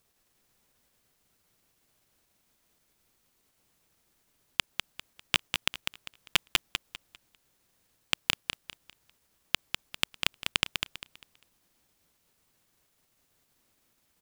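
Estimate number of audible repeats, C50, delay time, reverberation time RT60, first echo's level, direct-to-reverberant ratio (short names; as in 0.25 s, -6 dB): 3, none, 0.199 s, none, -5.5 dB, none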